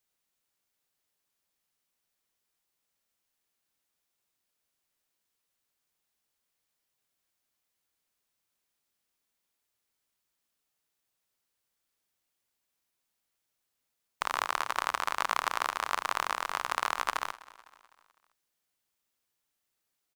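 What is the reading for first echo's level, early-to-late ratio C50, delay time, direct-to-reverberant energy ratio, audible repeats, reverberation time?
−20.0 dB, no reverb audible, 253 ms, no reverb audible, 3, no reverb audible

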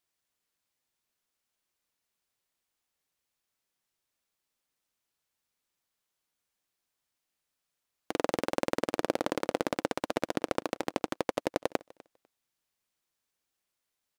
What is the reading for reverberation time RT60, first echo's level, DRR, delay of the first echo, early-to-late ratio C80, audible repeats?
no reverb audible, −23.0 dB, no reverb audible, 249 ms, no reverb audible, 1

